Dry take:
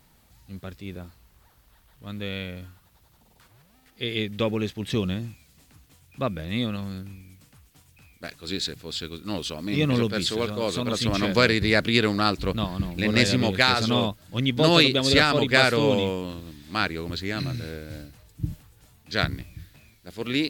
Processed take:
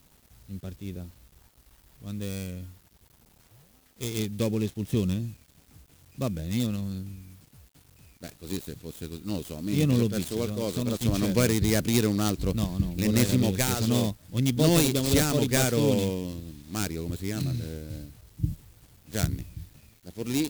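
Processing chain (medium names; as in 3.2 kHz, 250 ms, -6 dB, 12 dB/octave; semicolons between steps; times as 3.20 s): dead-time distortion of 0.11 ms; peaking EQ 1.4 kHz -12.5 dB 2.8 oct; word length cut 10-bit, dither none; trim +2 dB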